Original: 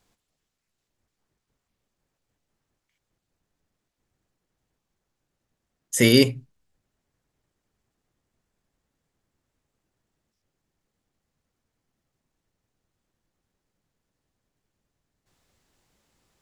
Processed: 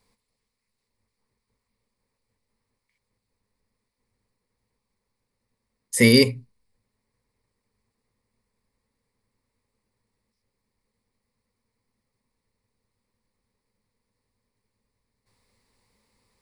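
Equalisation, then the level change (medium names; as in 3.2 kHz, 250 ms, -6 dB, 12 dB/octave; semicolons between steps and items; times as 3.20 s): rippled EQ curve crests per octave 0.92, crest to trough 10 dB; -1.0 dB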